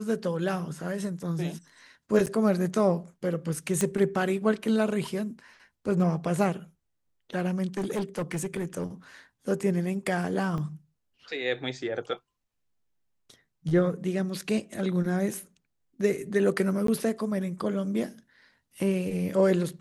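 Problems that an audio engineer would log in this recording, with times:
2.26–2.27 s: dropout 8.4 ms
3.81 s: pop -13 dBFS
7.77–8.84 s: clipped -25.5 dBFS
10.58 s: dropout 2.5 ms
16.87–16.88 s: dropout 13 ms

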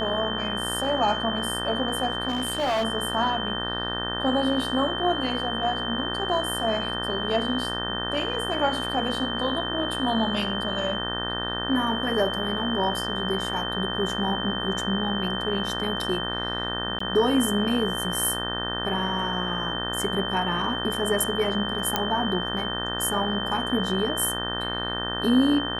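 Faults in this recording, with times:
buzz 60 Hz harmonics 31 -32 dBFS
whine 3.1 kHz -30 dBFS
2.28–2.85 s: clipped -21 dBFS
16.99–17.00 s: dropout 14 ms
21.96 s: pop -6 dBFS

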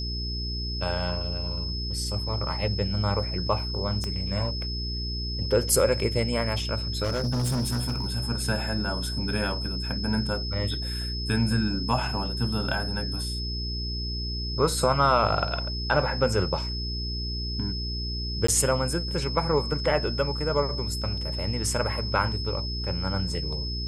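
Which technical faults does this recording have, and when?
hum 60 Hz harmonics 7 -32 dBFS
whine 5.2 kHz -33 dBFS
4.04 s: pop -17 dBFS
7.03–8.12 s: clipped -23 dBFS
18.47–18.48 s: dropout 14 ms

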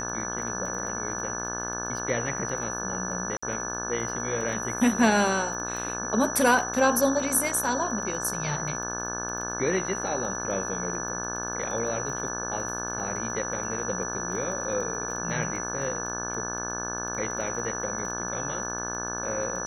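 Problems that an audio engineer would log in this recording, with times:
buzz 60 Hz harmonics 29 -35 dBFS
crackle 15 per s -34 dBFS
whine 5.9 kHz -33 dBFS
3.37–3.42 s: dropout 55 ms

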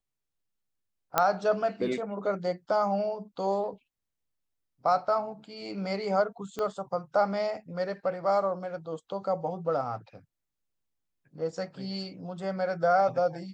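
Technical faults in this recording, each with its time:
1.18 s: pop -7 dBFS
6.59 s: pop -20 dBFS

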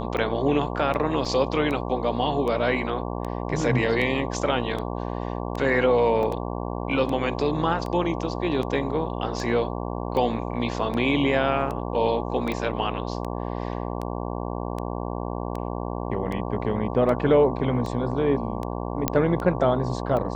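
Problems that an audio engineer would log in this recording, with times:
buzz 60 Hz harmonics 19 -30 dBFS
tick 78 rpm -19 dBFS
1.25 s: dropout 3.7 ms
6.23 s: dropout 2.2 ms
12.52 s: pop -16 dBFS
19.08 s: pop -5 dBFS

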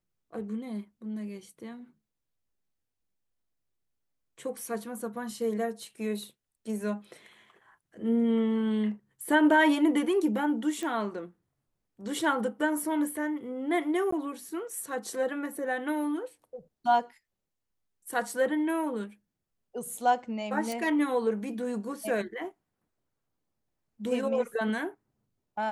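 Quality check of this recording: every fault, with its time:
10.83 s: pop -23 dBFS
14.11–14.12 s: dropout 14 ms
20.72 s: pop

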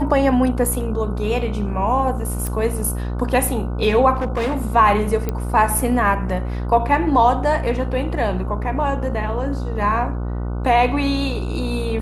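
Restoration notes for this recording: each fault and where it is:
buzz 60 Hz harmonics 25 -24 dBFS
2.47 s: pop
4.14–4.65 s: clipped -17.5 dBFS
5.29 s: pop -10 dBFS

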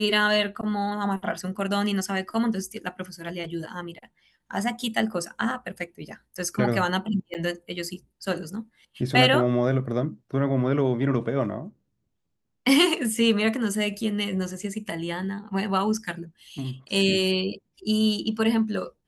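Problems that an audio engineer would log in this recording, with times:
7.34–7.35 s: dropout 8.6 ms

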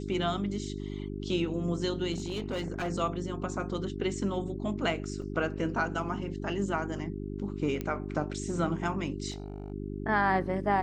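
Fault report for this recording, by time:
hum 50 Hz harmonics 8 -37 dBFS
2.12–2.90 s: clipped -28.5 dBFS
5.22 s: dropout 2.6 ms
7.81 s: pop -20 dBFS
9.30–9.72 s: clipped -33.5 dBFS

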